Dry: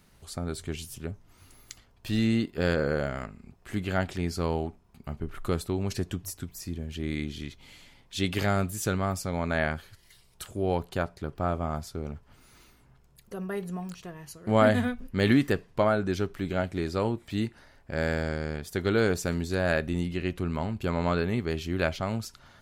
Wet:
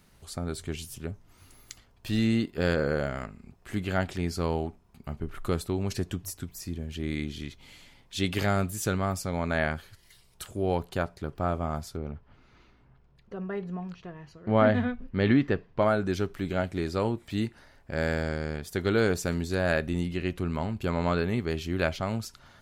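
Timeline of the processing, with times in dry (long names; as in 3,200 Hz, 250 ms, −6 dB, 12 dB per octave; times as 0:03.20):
0:11.97–0:15.82: high-frequency loss of the air 220 metres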